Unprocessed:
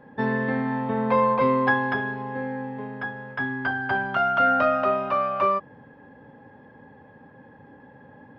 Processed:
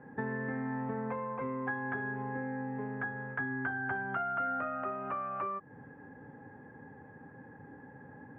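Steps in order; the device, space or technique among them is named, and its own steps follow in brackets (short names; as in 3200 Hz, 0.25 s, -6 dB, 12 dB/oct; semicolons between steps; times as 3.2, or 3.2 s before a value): air absorption 59 m; bass amplifier (compressor 5:1, threshold -31 dBFS, peak gain reduction 13 dB; speaker cabinet 71–2000 Hz, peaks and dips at 220 Hz -4 dB, 580 Hz -9 dB, 1000 Hz -6 dB)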